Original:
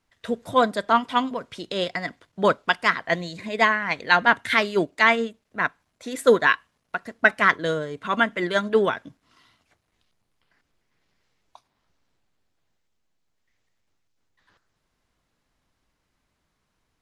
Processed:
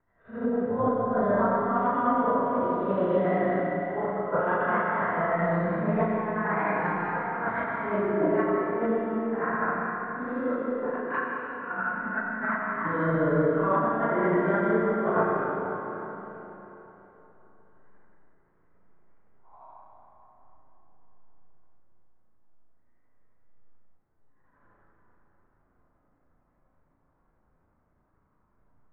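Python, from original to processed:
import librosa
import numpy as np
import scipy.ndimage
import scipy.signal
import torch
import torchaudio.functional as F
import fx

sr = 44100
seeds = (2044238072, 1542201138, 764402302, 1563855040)

y = fx.phase_scramble(x, sr, seeds[0], window_ms=200)
y = fx.stretch_grains(y, sr, factor=1.7, grain_ms=176.0)
y = fx.spec_box(y, sr, start_s=11.17, length_s=1.92, low_hz=340.0, high_hz=830.0, gain_db=-10)
y = fx.over_compress(y, sr, threshold_db=-27.0, ratio=-0.5)
y = scipy.signal.sosfilt(scipy.signal.butter(4, 1400.0, 'lowpass', fs=sr, output='sos'), y)
y = fx.rev_freeverb(y, sr, rt60_s=3.8, hf_ratio=0.75, predelay_ms=60, drr_db=-1.5)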